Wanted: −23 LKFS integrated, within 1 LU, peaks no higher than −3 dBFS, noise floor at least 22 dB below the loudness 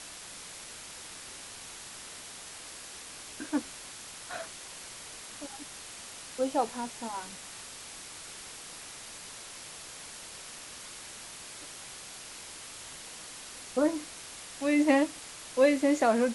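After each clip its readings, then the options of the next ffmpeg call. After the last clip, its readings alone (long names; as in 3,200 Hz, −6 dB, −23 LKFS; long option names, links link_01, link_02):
background noise floor −46 dBFS; target noise floor −57 dBFS; integrated loudness −34.5 LKFS; sample peak −11.5 dBFS; target loudness −23.0 LKFS
→ -af "afftdn=noise_reduction=11:noise_floor=-46"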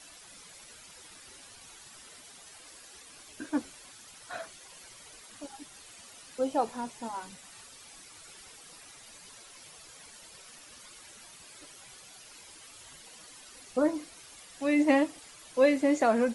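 background noise floor −52 dBFS; integrated loudness −29.5 LKFS; sample peak −11.5 dBFS; target loudness −23.0 LKFS
→ -af "volume=6.5dB"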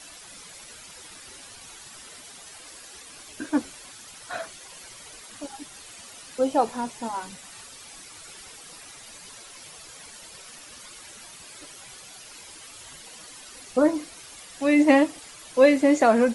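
integrated loudness −23.0 LKFS; sample peak −5.0 dBFS; background noise floor −46 dBFS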